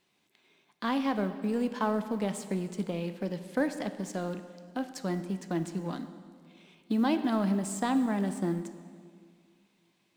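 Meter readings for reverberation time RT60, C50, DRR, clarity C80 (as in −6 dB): 2.1 s, 11.0 dB, 9.5 dB, 12.0 dB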